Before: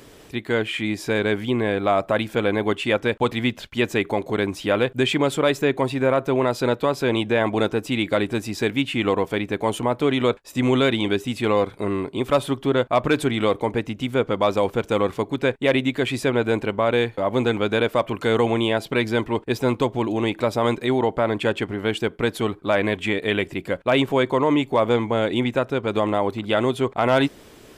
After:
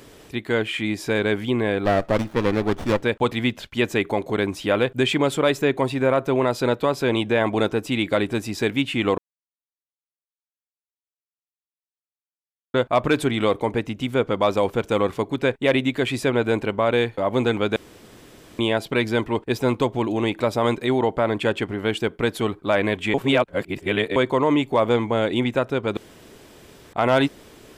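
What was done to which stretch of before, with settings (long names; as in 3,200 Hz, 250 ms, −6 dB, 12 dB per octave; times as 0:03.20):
0:01.85–0:03.03: windowed peak hold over 17 samples
0:09.18–0:12.74: silence
0:17.76–0:18.59: fill with room tone
0:23.14–0:24.16: reverse
0:25.97–0:26.93: fill with room tone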